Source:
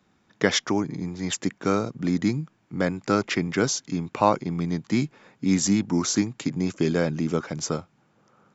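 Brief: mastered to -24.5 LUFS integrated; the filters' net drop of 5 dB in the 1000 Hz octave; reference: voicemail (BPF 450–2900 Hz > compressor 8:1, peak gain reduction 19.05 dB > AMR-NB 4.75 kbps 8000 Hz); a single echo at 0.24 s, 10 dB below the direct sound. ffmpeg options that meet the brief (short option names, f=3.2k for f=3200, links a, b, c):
-af "highpass=450,lowpass=2.9k,equalizer=f=1k:t=o:g=-6,aecho=1:1:240:0.316,acompressor=threshold=-37dB:ratio=8,volume=20.5dB" -ar 8000 -c:a libopencore_amrnb -b:a 4750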